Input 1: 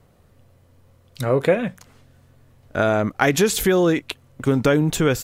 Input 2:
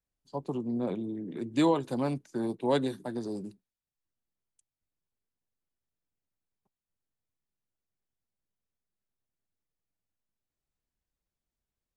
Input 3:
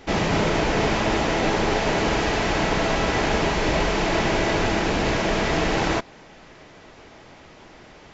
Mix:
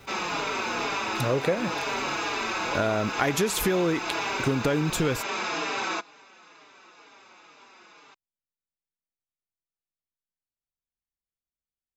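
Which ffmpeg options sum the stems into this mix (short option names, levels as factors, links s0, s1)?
-filter_complex "[0:a]acrusher=bits=8:mix=0:aa=0.000001,volume=0.944[s0];[1:a]volume=0.266[s1];[2:a]highpass=500,aecho=1:1:0.8:0.53,asplit=2[s2][s3];[s3]adelay=4.6,afreqshift=-2.1[s4];[s2][s4]amix=inputs=2:normalize=1,volume=0.891[s5];[s0][s1][s5]amix=inputs=3:normalize=0,acompressor=threshold=0.0631:ratio=2.5"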